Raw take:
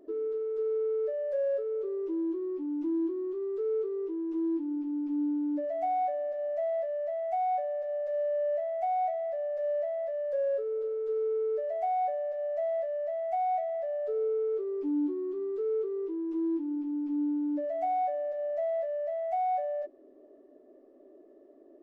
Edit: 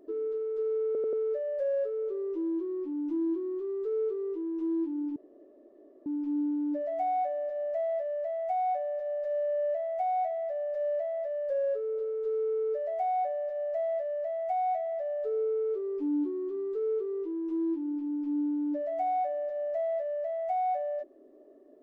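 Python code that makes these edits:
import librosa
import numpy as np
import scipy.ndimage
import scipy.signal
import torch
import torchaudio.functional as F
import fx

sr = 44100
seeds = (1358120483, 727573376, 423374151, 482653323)

y = fx.edit(x, sr, fx.stutter(start_s=0.86, slice_s=0.09, count=4),
    fx.insert_room_tone(at_s=4.89, length_s=0.9), tone=tone)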